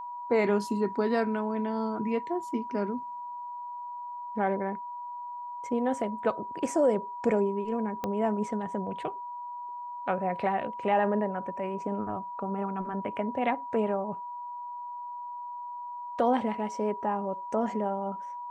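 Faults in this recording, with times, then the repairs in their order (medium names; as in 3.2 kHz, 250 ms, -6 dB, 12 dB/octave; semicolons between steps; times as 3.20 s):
whine 970 Hz -36 dBFS
8.04 s: pop -18 dBFS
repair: de-click; band-stop 970 Hz, Q 30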